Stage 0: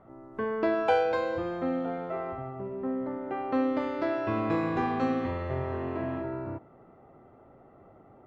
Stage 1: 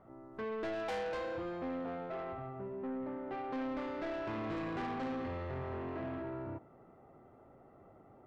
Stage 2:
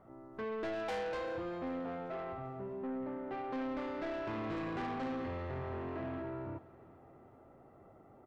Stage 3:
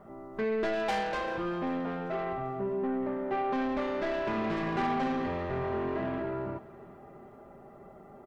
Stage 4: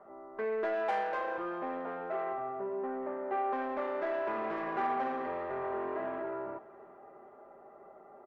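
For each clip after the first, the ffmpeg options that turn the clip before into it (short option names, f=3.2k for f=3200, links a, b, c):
-af "asoftclip=type=tanh:threshold=-30.5dB,volume=-4.5dB"
-af "aecho=1:1:391|782|1173|1564:0.0794|0.0453|0.0258|0.0147"
-af "aecho=1:1:5:0.6,volume=7dB"
-filter_complex "[0:a]acrossover=split=360 2000:gain=0.1 1 0.158[a][b][c];[a][b][c]amix=inputs=3:normalize=0"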